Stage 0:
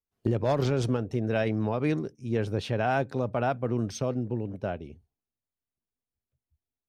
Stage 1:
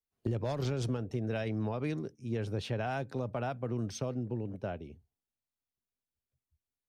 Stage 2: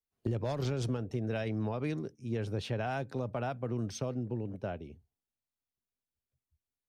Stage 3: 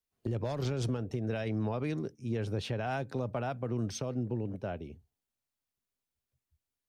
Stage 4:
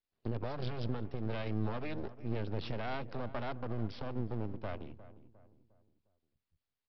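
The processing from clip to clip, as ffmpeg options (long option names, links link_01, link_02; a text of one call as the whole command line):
ffmpeg -i in.wav -filter_complex "[0:a]acrossover=split=140|3000[link_01][link_02][link_03];[link_02]acompressor=threshold=-28dB:ratio=6[link_04];[link_01][link_04][link_03]amix=inputs=3:normalize=0,volume=-4dB" out.wav
ffmpeg -i in.wav -af anull out.wav
ffmpeg -i in.wav -af "alimiter=level_in=2.5dB:limit=-24dB:level=0:latency=1:release=181,volume=-2.5dB,volume=2.5dB" out.wav
ffmpeg -i in.wav -filter_complex "[0:a]aresample=11025,aeval=exprs='max(val(0),0)':channel_layout=same,aresample=44100,asplit=2[link_01][link_02];[link_02]adelay=355,lowpass=frequency=1400:poles=1,volume=-15dB,asplit=2[link_03][link_04];[link_04]adelay=355,lowpass=frequency=1400:poles=1,volume=0.43,asplit=2[link_05][link_06];[link_06]adelay=355,lowpass=frequency=1400:poles=1,volume=0.43,asplit=2[link_07][link_08];[link_08]adelay=355,lowpass=frequency=1400:poles=1,volume=0.43[link_09];[link_01][link_03][link_05][link_07][link_09]amix=inputs=5:normalize=0" out.wav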